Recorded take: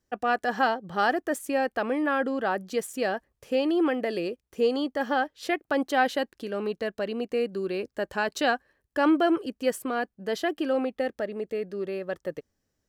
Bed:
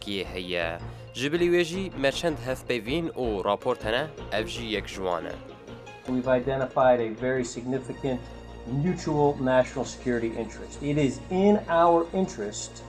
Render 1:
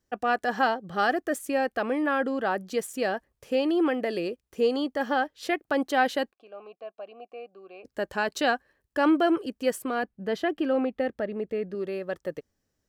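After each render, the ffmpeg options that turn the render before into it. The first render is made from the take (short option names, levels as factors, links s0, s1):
-filter_complex "[0:a]asettb=1/sr,asplit=3[s0][s1][s2];[s0]atrim=end=0.894[s3];[s1]atrim=start=0.89:end=1.8,asetpts=PTS-STARTPTS,afade=t=in:d=0.004:c=qsin,afade=t=out:st=0.906:d=0.004:c=qsin,asuperstop=centerf=930:order=4:qfactor=6.2[s4];[s2]atrim=start=1.796[s5];[s3][s4]acrossfade=d=0.004:c1=hsin:c2=qsin[s6];[s6][s5]acrossfade=d=0.004:c1=qsin:c2=hsin,asplit=3[s7][s8][s9];[s7]afade=t=out:st=6.31:d=0.02[s10];[s8]asplit=3[s11][s12][s13];[s11]bandpass=f=730:t=q:w=8,volume=1[s14];[s12]bandpass=f=1090:t=q:w=8,volume=0.501[s15];[s13]bandpass=f=2440:t=q:w=8,volume=0.355[s16];[s14][s15][s16]amix=inputs=3:normalize=0,afade=t=in:st=6.31:d=0.02,afade=t=out:st=7.84:d=0.02[s17];[s9]afade=t=in:st=7.84:d=0.02[s18];[s10][s17][s18]amix=inputs=3:normalize=0,asettb=1/sr,asplit=3[s19][s20][s21];[s19]atrim=end=10.034[s22];[s20]atrim=start=10.03:end=11.75,asetpts=PTS-STARTPTS,afade=t=in:d=0.004:c=qsin,afade=t=out:st=1.716:d=0.004:c=qsin,bass=f=250:g=5,treble=f=4000:g=-9[s23];[s21]atrim=start=11.746[s24];[s22][s23]acrossfade=d=0.004:c1=hsin:c2=qsin[s25];[s25][s24]acrossfade=d=0.004:c1=qsin:c2=hsin"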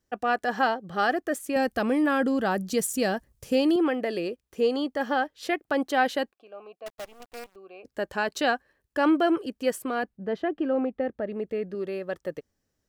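-filter_complex "[0:a]asettb=1/sr,asplit=3[s0][s1][s2];[s0]atrim=end=1.564[s3];[s1]atrim=start=1.56:end=3.76,asetpts=PTS-STARTPTS,afade=t=in:d=0.004:c=qsin,afade=t=out:st=2.196:d=0.004:c=qsin,bass=f=250:g=12,treble=f=4000:g=10[s4];[s2]atrim=start=3.756[s5];[s3][s4]acrossfade=d=0.004:c1=hsin:c2=qsin[s6];[s6][s5]acrossfade=d=0.004:c1=qsin:c2=hsin,asettb=1/sr,asplit=3[s7][s8][s9];[s7]atrim=end=6.864[s10];[s8]atrim=start=6.86:end=7.56,asetpts=PTS-STARTPTS,afade=t=in:d=0.004:c=qsin,afade=t=out:st=0.696:d=0.004:c=qsin,acrusher=bits=7:dc=4:mix=0:aa=0.000001[s11];[s9]atrim=start=7.556[s12];[s10][s11]acrossfade=d=0.004:c1=hsin:c2=qsin[s13];[s13][s12]acrossfade=d=0.004:c1=qsin:c2=hsin,asettb=1/sr,asplit=3[s14][s15][s16];[s14]atrim=end=10.174[s17];[s15]atrim=start=10.17:end=11.27,asetpts=PTS-STARTPTS,afade=t=in:d=0.004:c=qsin,afade=t=out:st=1.096:d=0.004:c=qsin,lowpass=f=1300:p=1[s18];[s16]atrim=start=11.266[s19];[s17][s18]acrossfade=d=0.004:c1=hsin:c2=qsin[s20];[s20][s19]acrossfade=d=0.004:c1=qsin:c2=hsin"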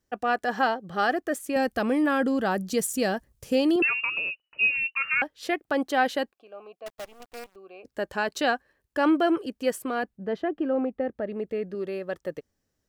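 -filter_complex "[0:a]asettb=1/sr,asplit=3[s0][s1][s2];[s0]atrim=end=3.824[s3];[s1]atrim=start=3.82:end=5.22,asetpts=PTS-STARTPTS,afade=t=in:d=0.004:c=qsin,afade=t=out:st=1.396:d=0.004:c=qsin,lowpass=f=2600:t=q:w=0.5098,lowpass=f=2600:t=q:w=0.6013,lowpass=f=2600:t=q:w=0.9,lowpass=f=2600:t=q:w=2.563,afreqshift=-3000[s4];[s2]atrim=start=5.216[s5];[s3][s4]acrossfade=d=0.004:c1=hsin:c2=qsin[s6];[s6][s5]acrossfade=d=0.004:c1=qsin:c2=hsin,asettb=1/sr,asplit=3[s7][s8][s9];[s7]atrim=end=10.414[s10];[s8]atrim=start=10.41:end=11.15,asetpts=PTS-STARTPTS,afade=t=in:d=0.004:c=qsin,afade=t=out:st=0.736:d=0.004:c=qsin,equalizer=f=4900:t=o:w=2.4:g=-4[s11];[s9]atrim=start=11.146[s12];[s10][s11]acrossfade=d=0.004:c1=hsin:c2=qsin[s13];[s13][s12]acrossfade=d=0.004:c1=qsin:c2=hsin"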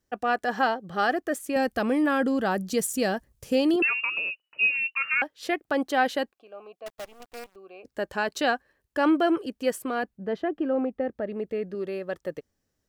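-filter_complex "[0:a]asettb=1/sr,asplit=3[s0][s1][s2];[s0]atrim=end=3.744[s3];[s1]atrim=start=3.74:end=5.39,asetpts=PTS-STARTPTS,afade=t=in:d=0.004:c=qsin,afade=t=out:st=1.646:d=0.004:c=qsin,highpass=f=190:p=1[s4];[s2]atrim=start=5.386[s5];[s3][s4]acrossfade=d=0.004:c1=hsin:c2=qsin[s6];[s6][s5]acrossfade=d=0.004:c1=qsin:c2=hsin"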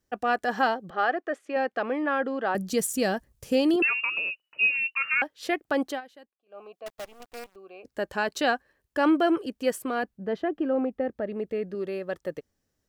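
-filter_complex "[0:a]asettb=1/sr,asplit=3[s0][s1][s2];[s0]atrim=end=0.904[s3];[s1]atrim=start=0.9:end=2.55,asetpts=PTS-STARTPTS,afade=t=in:d=0.004:c=qsin,afade=t=out:st=1.646:d=0.004:c=qsin,highpass=400,lowpass=2600[s4];[s2]atrim=start=2.546[s5];[s3][s4]acrossfade=d=0.004:c1=hsin:c2=qsin[s6];[s6][s5]acrossfade=d=0.004:c1=qsin:c2=hsin,asplit=3[s7][s8][s9];[s7]atrim=end=6.01,asetpts=PTS-STARTPTS,afade=t=out:st=5.88:d=0.13:silence=0.0707946[s10];[s8]atrim=start=6.01:end=6.46,asetpts=PTS-STARTPTS,volume=0.0708[s11];[s9]atrim=start=6.46,asetpts=PTS-STARTPTS,afade=t=in:d=0.13:silence=0.0707946[s12];[s10][s11][s12]concat=n=3:v=0:a=1"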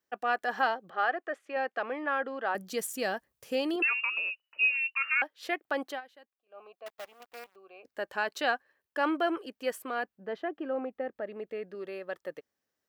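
-af "highpass=f=900:p=1,equalizer=f=7800:t=o:w=2:g=-8"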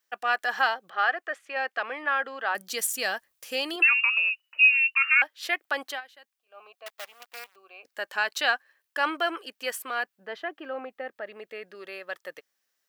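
-af "tiltshelf=f=690:g=-9.5"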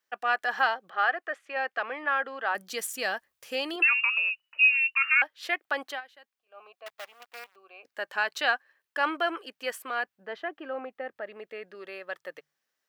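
-af "highshelf=f=3900:g=-8,bandreject=f=50:t=h:w=6,bandreject=f=100:t=h:w=6,bandreject=f=150:t=h:w=6"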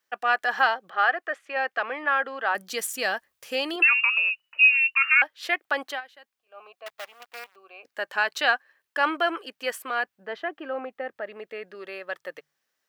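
-af "volume=1.5"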